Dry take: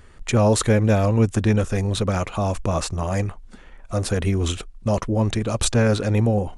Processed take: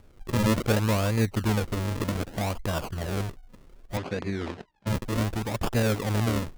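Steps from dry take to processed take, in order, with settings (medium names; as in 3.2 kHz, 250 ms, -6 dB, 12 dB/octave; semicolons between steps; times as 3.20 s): decimation with a swept rate 40×, swing 100% 0.65 Hz; 3.97–4.87 s: band-pass 140–4300 Hz; trim -6.5 dB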